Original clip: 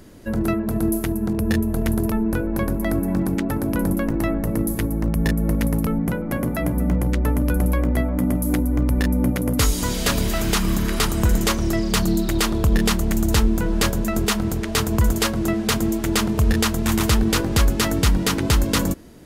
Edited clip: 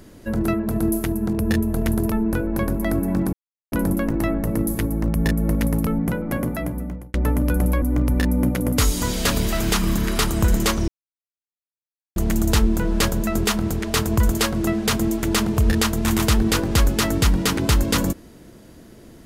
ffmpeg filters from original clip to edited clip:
ffmpeg -i in.wav -filter_complex "[0:a]asplit=7[link_01][link_02][link_03][link_04][link_05][link_06][link_07];[link_01]atrim=end=3.33,asetpts=PTS-STARTPTS,afade=type=out:start_time=3.326:duration=0.004:curve=hsin[link_08];[link_02]atrim=start=3.33:end=3.72,asetpts=PTS-STARTPTS,volume=0[link_09];[link_03]atrim=start=3.72:end=7.14,asetpts=PTS-STARTPTS,afade=type=in:duration=0.004:curve=hsin,afade=type=out:start_time=2.66:duration=0.76[link_10];[link_04]atrim=start=7.14:end=7.822,asetpts=PTS-STARTPTS,afade=type=in:duration=0.004:curve=hsin[link_11];[link_05]atrim=start=8.628:end=11.69,asetpts=PTS-STARTPTS,afade=type=out:start_time=3.058:duration=0.004:curve=hsin[link_12];[link_06]atrim=start=11.69:end=12.97,asetpts=PTS-STARTPTS,volume=0[link_13];[link_07]atrim=start=12.97,asetpts=PTS-STARTPTS,afade=type=in:duration=0.004:curve=hsin[link_14];[link_08][link_09][link_10][link_11]concat=n=4:v=0:a=1[link_15];[link_12][link_13][link_14]concat=n=3:v=0:a=1[link_16];[link_15][link_16]acrossfade=duration=0.004:curve1=hsin:curve2=hsin" out.wav

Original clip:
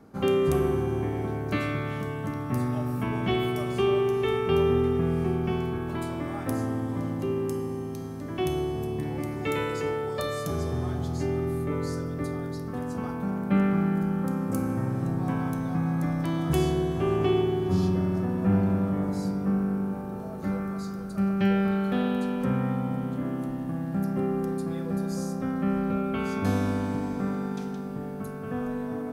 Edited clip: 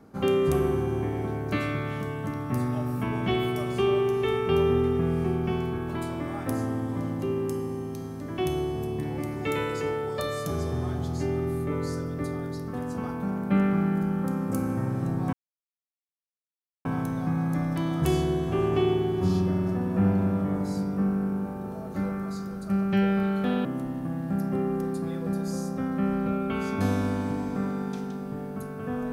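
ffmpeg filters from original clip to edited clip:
ffmpeg -i in.wav -filter_complex "[0:a]asplit=3[link_01][link_02][link_03];[link_01]atrim=end=15.33,asetpts=PTS-STARTPTS,afade=type=out:start_time=15.326:duration=0.004:curve=hsin,apad=pad_dur=1.52[link_04];[link_02]atrim=start=15.33:end=22.132,asetpts=PTS-STARTPTS,afade=type=in:duration=0.004:curve=hsin[link_05];[link_03]atrim=start=23.288[link_06];[link_04][link_05]concat=n=2:v=0:a=1[link_07];[link_07][link_06]acrossfade=duration=0.004:curve1=hsin:curve2=hsin" out.wav

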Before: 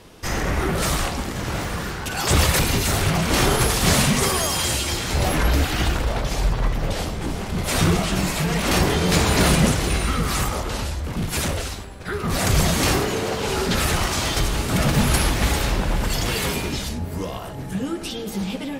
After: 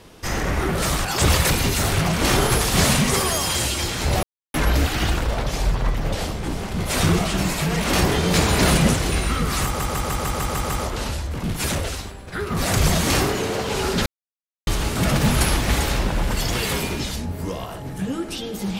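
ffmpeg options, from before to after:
ffmpeg -i in.wav -filter_complex "[0:a]asplit=12[link_01][link_02][link_03][link_04][link_05][link_06][link_07][link_08][link_09][link_10][link_11][link_12];[link_01]atrim=end=1.052[link_13];[link_02]atrim=start=2.138:end=5.32,asetpts=PTS-STARTPTS,afade=type=out:start_time=3.178:duration=0.004:curve=hsin,apad=pad_dur=0.31[link_14];[link_03]atrim=start=5.32:end=10.582,asetpts=PTS-STARTPTS,afade=type=in:duration=0.004:curve=hsin[link_15];[link_04]atrim=start=10.428:end=10.582[link_16];[link_05]atrim=start=10.428:end=10.582[link_17];[link_06]atrim=start=10.428:end=10.582[link_18];[link_07]atrim=start=10.428:end=10.582[link_19];[link_08]atrim=start=10.428:end=10.582[link_20];[link_09]atrim=start=10.428:end=10.582[link_21];[link_10]atrim=start=10.428:end=13.79,asetpts=PTS-STARTPTS,afade=type=out:start_time=3.358:duration=0.004:curve=hsin[link_22];[link_11]atrim=start=13.79:end=14.4,asetpts=PTS-STARTPTS,volume=0[link_23];[link_12]atrim=start=14.4,asetpts=PTS-STARTPTS,afade=type=in:duration=0.004:curve=hsin[link_24];[link_14][link_15]concat=n=2:v=0:a=1[link_25];[link_13][link_25]acrossfade=duration=0.004:curve1=hsin:curve2=hsin[link_26];[link_26][link_16]acrossfade=duration=0.004:curve1=hsin:curve2=hsin[link_27];[link_27][link_17]acrossfade=duration=0.004:curve1=hsin:curve2=hsin[link_28];[link_28][link_18]acrossfade=duration=0.004:curve1=hsin:curve2=hsin[link_29];[link_29][link_19]acrossfade=duration=0.004:curve1=hsin:curve2=hsin[link_30];[link_30][link_20]acrossfade=duration=0.004:curve1=hsin:curve2=hsin[link_31];[link_31][link_21]acrossfade=duration=0.004:curve1=hsin:curve2=hsin[link_32];[link_22][link_23][link_24]concat=n=3:v=0:a=1[link_33];[link_32][link_33]acrossfade=duration=0.004:curve1=hsin:curve2=hsin" out.wav

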